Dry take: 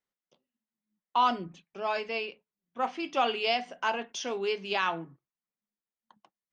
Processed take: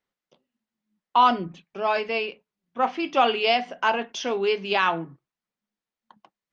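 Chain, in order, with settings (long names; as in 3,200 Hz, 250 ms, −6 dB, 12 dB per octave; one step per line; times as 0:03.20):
high-frequency loss of the air 97 metres
level +7.5 dB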